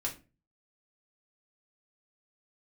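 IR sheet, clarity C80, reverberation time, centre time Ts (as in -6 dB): 18.5 dB, 0.30 s, 15 ms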